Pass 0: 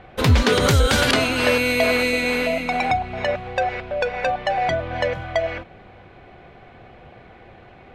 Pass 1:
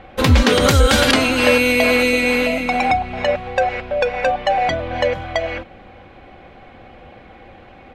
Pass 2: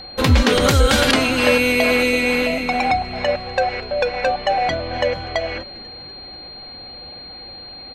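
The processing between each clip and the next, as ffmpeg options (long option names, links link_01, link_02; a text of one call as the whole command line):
ffmpeg -i in.wav -af "aecho=1:1:3.7:0.41,volume=3dB" out.wav
ffmpeg -i in.wav -filter_complex "[0:a]aeval=exprs='val(0)+0.0224*sin(2*PI*4200*n/s)':channel_layout=same,asplit=6[link_01][link_02][link_03][link_04][link_05][link_06];[link_02]adelay=245,afreqshift=-88,volume=-22.5dB[link_07];[link_03]adelay=490,afreqshift=-176,volume=-26.5dB[link_08];[link_04]adelay=735,afreqshift=-264,volume=-30.5dB[link_09];[link_05]adelay=980,afreqshift=-352,volume=-34.5dB[link_10];[link_06]adelay=1225,afreqshift=-440,volume=-38.6dB[link_11];[link_01][link_07][link_08][link_09][link_10][link_11]amix=inputs=6:normalize=0,volume=-1.5dB" out.wav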